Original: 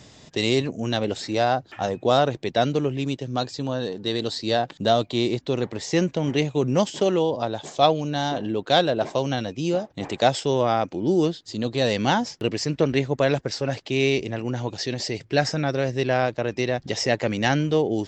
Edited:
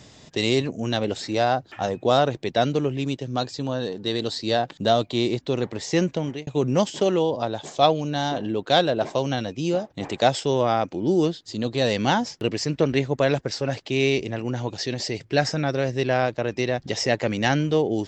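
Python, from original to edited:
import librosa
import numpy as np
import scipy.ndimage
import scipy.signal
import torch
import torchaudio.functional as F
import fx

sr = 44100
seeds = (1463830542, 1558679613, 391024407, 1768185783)

y = fx.edit(x, sr, fx.fade_out_span(start_s=6.15, length_s=0.32), tone=tone)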